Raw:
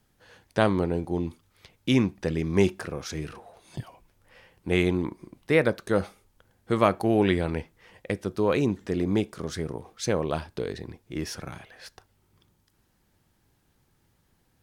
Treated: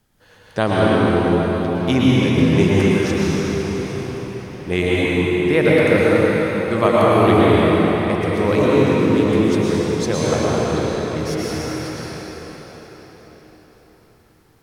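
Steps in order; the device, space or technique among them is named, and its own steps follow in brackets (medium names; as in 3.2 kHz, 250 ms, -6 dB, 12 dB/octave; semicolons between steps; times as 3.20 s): cathedral (reverberation RT60 5.4 s, pre-delay 103 ms, DRR -8 dB); trim +2.5 dB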